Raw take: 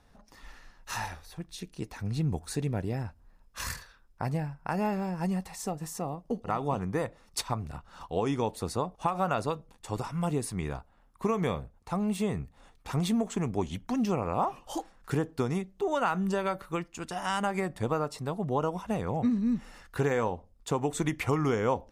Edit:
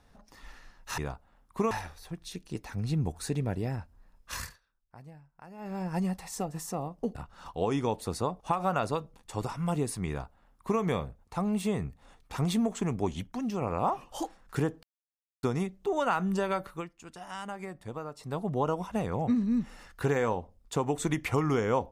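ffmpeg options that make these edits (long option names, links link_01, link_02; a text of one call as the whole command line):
ffmpeg -i in.wav -filter_complex "[0:a]asplit=11[link_01][link_02][link_03][link_04][link_05][link_06][link_07][link_08][link_09][link_10][link_11];[link_01]atrim=end=0.982[link_12];[link_02]atrim=start=10.628:end=11.362[link_13];[link_03]atrim=start=0.978:end=3.87,asetpts=PTS-STARTPTS,afade=type=out:start_time=2.612:duration=0.28:silence=0.11885[link_14];[link_04]atrim=start=3.87:end=4.85,asetpts=PTS-STARTPTS,volume=-18.5dB[link_15];[link_05]atrim=start=4.85:end=6.422,asetpts=PTS-STARTPTS,afade=type=in:duration=0.28:silence=0.11885[link_16];[link_06]atrim=start=7.698:end=13.822[link_17];[link_07]atrim=start=13.818:end=14.162,asetpts=PTS-STARTPTS,volume=-4.5dB[link_18];[link_08]atrim=start=14.158:end=15.38,asetpts=PTS-STARTPTS,afade=type=out:start_time=1.218:duration=0.004:curve=hsin,apad=pad_dur=0.6[link_19];[link_09]atrim=start=15.38:end=16.82,asetpts=PTS-STARTPTS,afade=type=in:duration=0.004:curve=hsin,afade=type=out:start_time=1.24:duration=0.2:silence=0.334965[link_20];[link_10]atrim=start=16.82:end=18.12,asetpts=PTS-STARTPTS,volume=-9.5dB[link_21];[link_11]atrim=start=18.12,asetpts=PTS-STARTPTS,afade=type=in:duration=0.2:silence=0.334965[link_22];[link_12][link_13]acrossfade=duration=0.004:curve1=hsin:curve2=hsin[link_23];[link_14][link_15][link_16]concat=n=3:v=0:a=1[link_24];[link_23][link_24]acrossfade=duration=0.004:curve1=hsin:curve2=hsin[link_25];[link_25][link_17]acrossfade=duration=0.004:curve1=hsin:curve2=hsin[link_26];[link_26][link_18]acrossfade=duration=0.004:curve1=hsin:curve2=hsin[link_27];[link_19][link_20][link_21][link_22]concat=n=4:v=0:a=1[link_28];[link_27][link_28]acrossfade=duration=0.004:curve1=hsin:curve2=hsin" out.wav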